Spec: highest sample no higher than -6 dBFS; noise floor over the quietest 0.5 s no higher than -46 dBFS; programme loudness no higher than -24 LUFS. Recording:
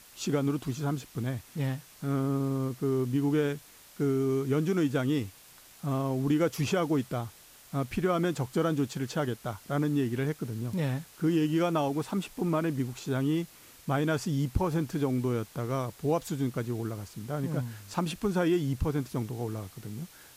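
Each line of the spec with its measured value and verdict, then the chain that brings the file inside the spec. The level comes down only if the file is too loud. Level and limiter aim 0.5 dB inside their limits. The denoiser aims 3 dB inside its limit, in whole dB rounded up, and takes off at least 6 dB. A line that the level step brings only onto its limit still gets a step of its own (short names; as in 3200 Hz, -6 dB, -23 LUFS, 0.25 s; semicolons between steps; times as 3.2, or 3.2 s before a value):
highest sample -13.5 dBFS: OK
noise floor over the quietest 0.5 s -54 dBFS: OK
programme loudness -30.5 LUFS: OK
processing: none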